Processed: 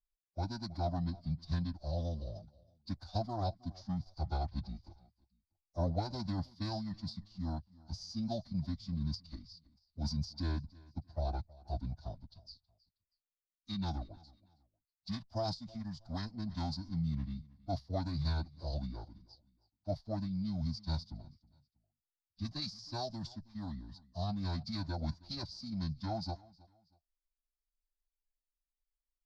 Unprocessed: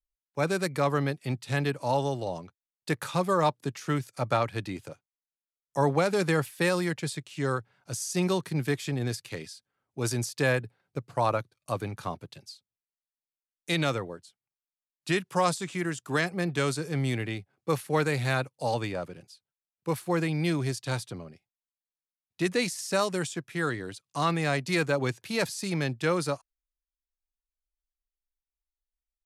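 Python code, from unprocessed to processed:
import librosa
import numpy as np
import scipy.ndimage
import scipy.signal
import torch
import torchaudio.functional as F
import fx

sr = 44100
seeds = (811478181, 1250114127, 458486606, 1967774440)

p1 = scipy.ndimage.median_filter(x, 3, mode='constant')
p2 = fx.backlash(p1, sr, play_db=-31.5)
p3 = p1 + F.gain(torch.from_numpy(p2), -8.0).numpy()
p4 = fx.tone_stack(p3, sr, knobs='10-0-1')
p5 = p4 + fx.echo_feedback(p4, sr, ms=319, feedback_pct=29, wet_db=-22.5, dry=0)
p6 = fx.pitch_keep_formants(p5, sr, semitones=-8.5)
p7 = fx.curve_eq(p6, sr, hz=(100.0, 440.0, 640.0, 2600.0, 4800.0, 8200.0), db=(0, -10, 12, -16, 11, -26))
y = F.gain(torch.from_numpy(p7), 8.5).numpy()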